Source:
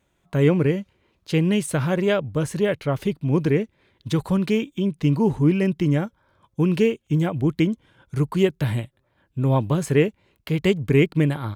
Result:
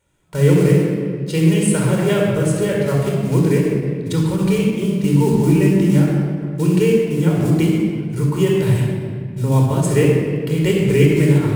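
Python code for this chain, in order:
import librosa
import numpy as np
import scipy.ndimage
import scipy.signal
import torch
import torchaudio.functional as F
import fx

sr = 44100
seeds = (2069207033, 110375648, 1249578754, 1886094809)

y = fx.block_float(x, sr, bits=5)
y = fx.peak_eq(y, sr, hz=8800.0, db=9.0, octaves=0.74)
y = fx.room_shoebox(y, sr, seeds[0], volume_m3=3400.0, walls='mixed', distance_m=4.6)
y = fx.end_taper(y, sr, db_per_s=180.0)
y = y * librosa.db_to_amplitude(-3.0)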